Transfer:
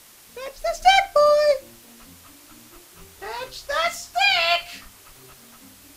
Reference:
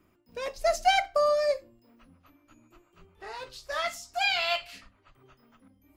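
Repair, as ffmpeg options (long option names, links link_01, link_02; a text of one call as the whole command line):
ffmpeg -i in.wav -af "afwtdn=0.004,asetnsamples=nb_out_samples=441:pad=0,asendcmd='0.82 volume volume -8dB',volume=0dB" out.wav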